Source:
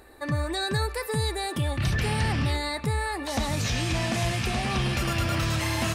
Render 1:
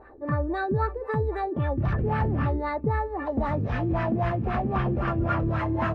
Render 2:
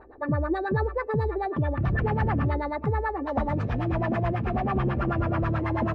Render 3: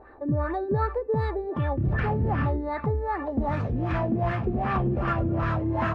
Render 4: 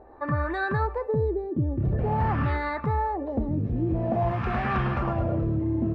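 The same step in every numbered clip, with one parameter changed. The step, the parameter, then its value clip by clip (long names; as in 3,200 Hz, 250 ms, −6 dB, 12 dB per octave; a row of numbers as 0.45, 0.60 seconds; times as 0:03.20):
auto-filter low-pass, speed: 3.8, 9.2, 2.6, 0.48 Hertz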